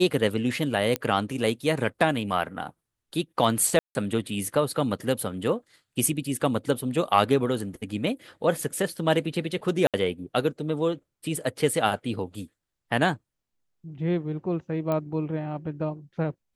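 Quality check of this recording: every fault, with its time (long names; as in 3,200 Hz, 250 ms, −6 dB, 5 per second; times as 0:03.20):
0:00.96: click −10 dBFS
0:03.79–0:03.95: drop-out 160 ms
0:09.87–0:09.94: drop-out 67 ms
0:14.92: click −16 dBFS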